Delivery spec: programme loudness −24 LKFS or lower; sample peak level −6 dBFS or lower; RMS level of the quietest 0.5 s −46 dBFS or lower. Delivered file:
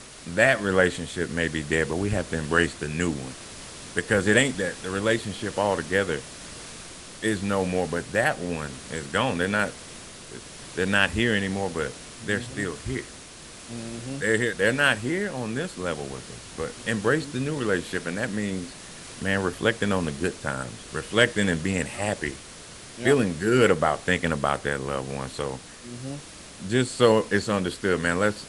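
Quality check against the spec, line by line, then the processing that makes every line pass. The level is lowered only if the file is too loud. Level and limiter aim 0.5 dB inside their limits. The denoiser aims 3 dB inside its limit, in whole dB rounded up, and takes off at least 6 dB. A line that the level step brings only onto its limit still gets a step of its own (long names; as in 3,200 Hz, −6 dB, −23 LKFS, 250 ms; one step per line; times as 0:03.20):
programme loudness −25.5 LKFS: in spec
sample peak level −3.5 dBFS: out of spec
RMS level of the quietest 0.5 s −44 dBFS: out of spec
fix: broadband denoise 6 dB, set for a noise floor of −44 dBFS
brickwall limiter −6.5 dBFS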